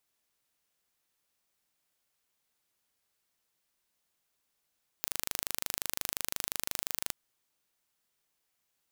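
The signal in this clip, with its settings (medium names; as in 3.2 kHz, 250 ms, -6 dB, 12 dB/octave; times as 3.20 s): pulse train 25.7 per s, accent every 0, -5 dBFS 2.08 s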